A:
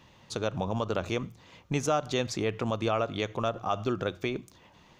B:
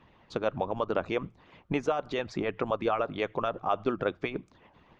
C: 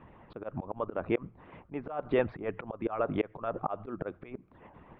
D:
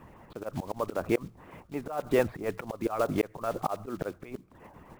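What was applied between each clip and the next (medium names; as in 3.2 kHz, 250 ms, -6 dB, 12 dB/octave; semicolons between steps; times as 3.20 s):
low-pass 2.3 kHz 12 dB/octave; harmonic-percussive split harmonic -16 dB; trim +4 dB
Gaussian low-pass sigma 3.9 samples; slow attack 284 ms; trim +6.5 dB
block-companded coder 5-bit; trim +2.5 dB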